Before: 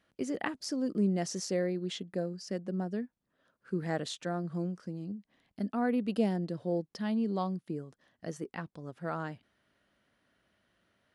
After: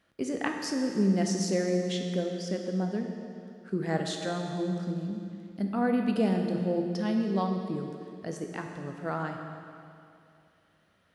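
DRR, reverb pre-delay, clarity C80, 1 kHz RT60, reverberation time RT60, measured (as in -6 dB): 2.5 dB, 11 ms, 5.0 dB, 2.6 s, 2.6 s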